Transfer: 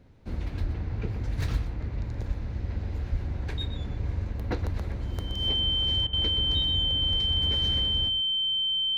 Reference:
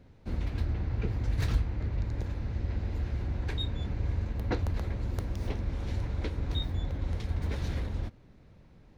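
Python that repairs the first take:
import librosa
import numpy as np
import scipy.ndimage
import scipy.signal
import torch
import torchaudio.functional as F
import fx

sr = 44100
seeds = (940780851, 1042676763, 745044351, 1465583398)

y = fx.notch(x, sr, hz=3100.0, q=30.0)
y = fx.fix_deplosive(y, sr, at_s=(0.61, 2.27, 3.11, 7.1))
y = fx.fix_interpolate(y, sr, at_s=(6.07,), length_ms=59.0)
y = fx.fix_echo_inverse(y, sr, delay_ms=123, level_db=-11.0)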